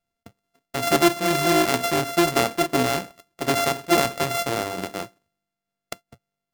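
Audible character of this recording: a buzz of ramps at a fixed pitch in blocks of 64 samples; tremolo saw down 2.3 Hz, depth 35%; AAC

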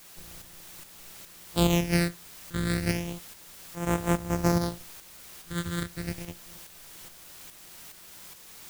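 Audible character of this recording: a buzz of ramps at a fixed pitch in blocks of 256 samples; phasing stages 8, 0.31 Hz, lowest notch 750–4500 Hz; a quantiser's noise floor 8-bit, dither triangular; tremolo saw up 2.4 Hz, depth 50%

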